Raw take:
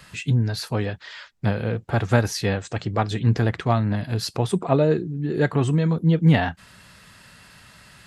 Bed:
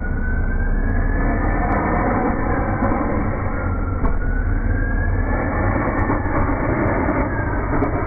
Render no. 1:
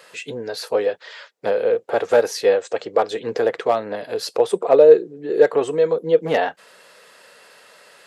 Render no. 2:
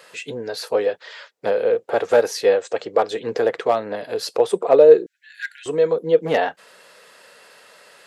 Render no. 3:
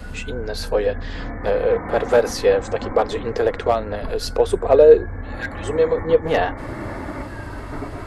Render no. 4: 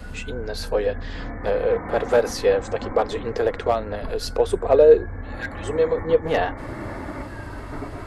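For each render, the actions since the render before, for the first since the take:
hard clipping −9.5 dBFS, distortion −22 dB; high-pass with resonance 480 Hz, resonance Q 4.9
0:05.06–0:05.66: linear-phase brick-wall high-pass 1,400 Hz
mix in bed −11 dB
level −2.5 dB

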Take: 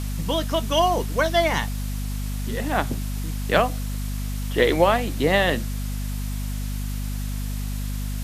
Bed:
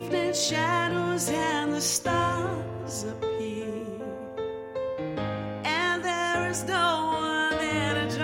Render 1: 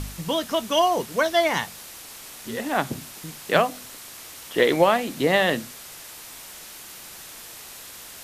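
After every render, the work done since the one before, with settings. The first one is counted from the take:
hum removal 50 Hz, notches 5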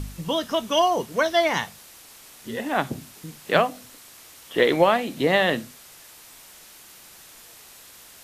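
noise reduction from a noise print 6 dB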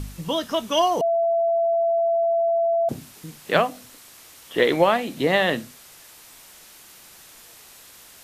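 0:01.01–0:02.89: beep over 672 Hz −17.5 dBFS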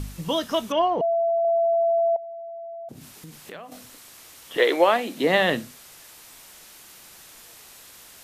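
0:00.72–0:01.45: high-frequency loss of the air 420 metres
0:02.16–0:03.72: downward compressor 5 to 1, threshold −38 dBFS
0:04.56–0:05.37: high-pass filter 390 Hz → 160 Hz 24 dB per octave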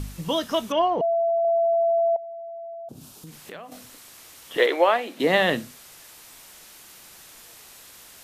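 0:02.74–0:03.27: parametric band 2,000 Hz −12.5 dB 0.6 octaves
0:04.66–0:05.20: bass and treble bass −14 dB, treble −7 dB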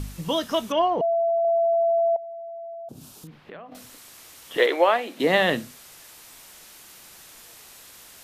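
0:03.27–0:03.75: high-frequency loss of the air 360 metres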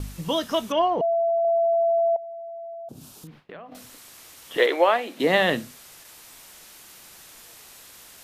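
noise gate with hold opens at −37 dBFS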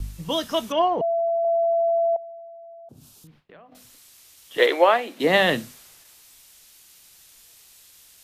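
multiband upward and downward expander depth 40%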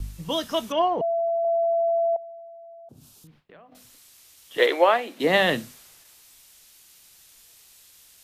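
level −1.5 dB

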